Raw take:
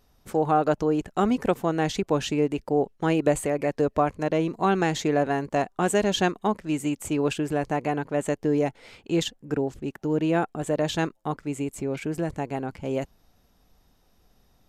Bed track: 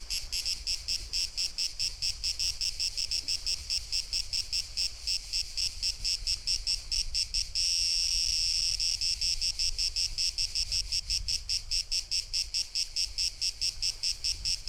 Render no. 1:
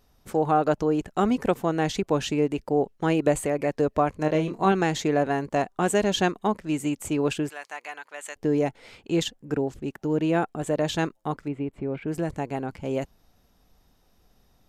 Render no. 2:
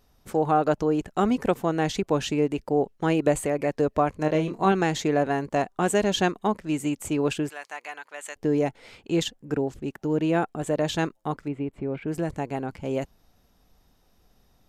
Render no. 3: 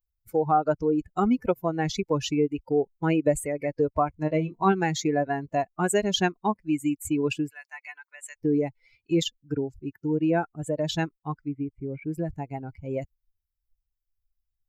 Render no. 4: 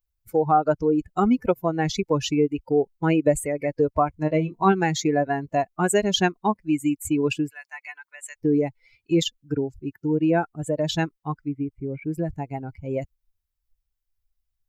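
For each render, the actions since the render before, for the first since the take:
0:04.17–0:04.72: double-tracking delay 26 ms −7 dB; 0:07.49–0:08.36: high-pass filter 1,400 Hz; 0:11.48–0:12.08: high-frequency loss of the air 440 metres
no processing that can be heard
spectral dynamics exaggerated over time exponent 2; in parallel at +2 dB: downward compressor, threshold −33 dBFS, peak gain reduction 13.5 dB
level +3 dB

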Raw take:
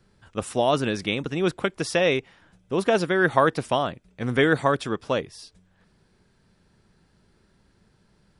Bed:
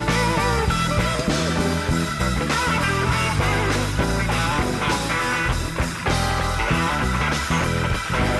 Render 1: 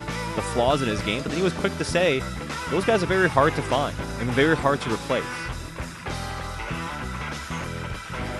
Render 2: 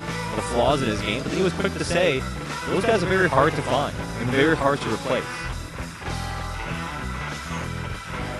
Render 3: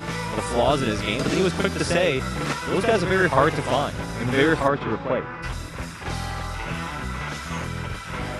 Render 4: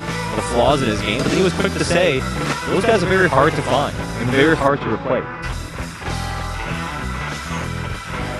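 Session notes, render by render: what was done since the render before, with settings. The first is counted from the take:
mix in bed −10 dB
backwards echo 47 ms −6.5 dB
0:01.19–0:02.53: multiband upward and downward compressor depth 70%; 0:04.67–0:05.42: low-pass filter 2,600 Hz → 1,400 Hz
level +5 dB; brickwall limiter −1 dBFS, peak gain reduction 1.5 dB

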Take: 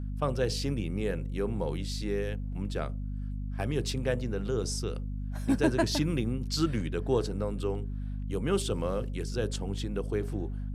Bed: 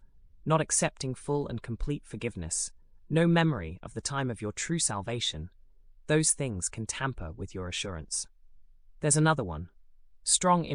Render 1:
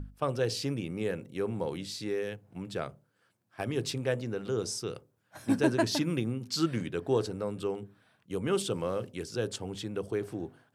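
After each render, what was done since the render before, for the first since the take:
mains-hum notches 50/100/150/200/250 Hz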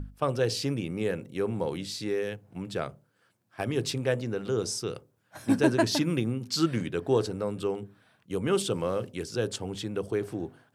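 level +3 dB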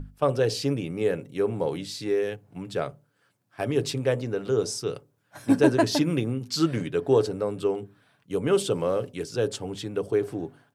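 dynamic equaliser 520 Hz, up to +5 dB, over −36 dBFS, Q 0.94
comb filter 7 ms, depth 32%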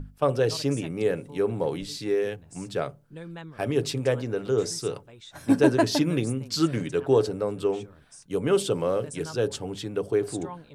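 mix in bed −16.5 dB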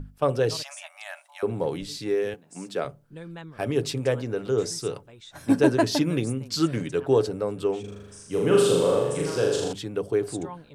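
0:00.63–0:01.43: linear-phase brick-wall high-pass 580 Hz
0:02.34–0:02.85: high-pass filter 180 Hz 24 dB per octave
0:07.80–0:09.73: flutter between parallel walls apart 6.8 metres, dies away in 1.1 s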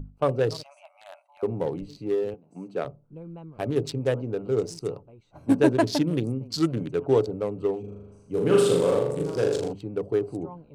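adaptive Wiener filter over 25 samples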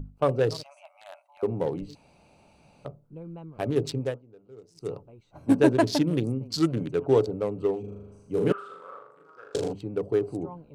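0:01.95–0:02.85: fill with room tone
0:03.99–0:04.94: duck −23 dB, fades 0.20 s
0:08.52–0:09.55: resonant band-pass 1,300 Hz, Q 9.8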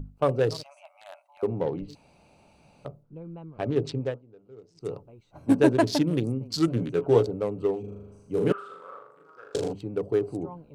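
0:01.46–0:01.87: low-pass filter 6,500 Hz → 3,100 Hz
0:03.03–0:04.85: high-frequency loss of the air 89 metres
0:06.66–0:07.27: double-tracking delay 17 ms −6 dB

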